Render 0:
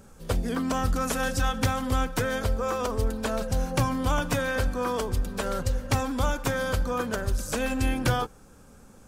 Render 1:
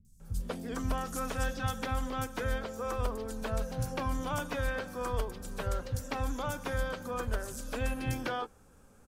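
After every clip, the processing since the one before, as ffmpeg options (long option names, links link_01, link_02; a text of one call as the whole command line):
ffmpeg -i in.wav -filter_complex "[0:a]acrossover=split=200|5000[link_01][link_02][link_03];[link_03]adelay=50[link_04];[link_02]adelay=200[link_05];[link_01][link_05][link_04]amix=inputs=3:normalize=0,volume=-7dB" out.wav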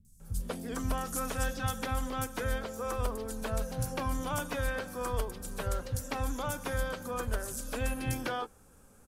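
ffmpeg -i in.wav -af "equalizer=frequency=11000:width_type=o:width=1:gain=7.5" out.wav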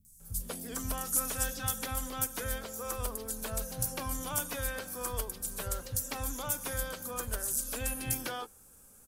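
ffmpeg -i in.wav -af "aemphasis=mode=production:type=75kf,volume=-5dB" out.wav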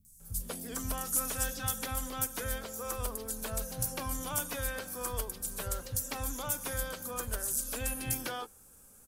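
ffmpeg -i in.wav -af "asoftclip=type=tanh:threshold=-16.5dB" out.wav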